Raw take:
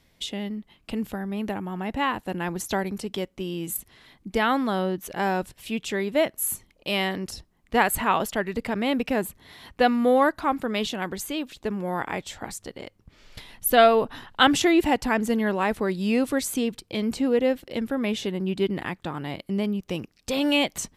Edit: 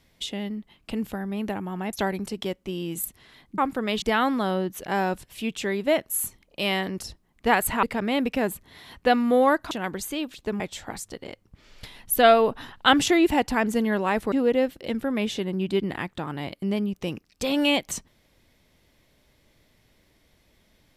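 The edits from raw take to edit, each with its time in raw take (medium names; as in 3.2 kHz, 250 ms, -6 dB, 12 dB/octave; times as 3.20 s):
1.93–2.65 s: delete
8.11–8.57 s: delete
10.45–10.89 s: move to 4.30 s
11.78–12.14 s: delete
15.86–17.19 s: delete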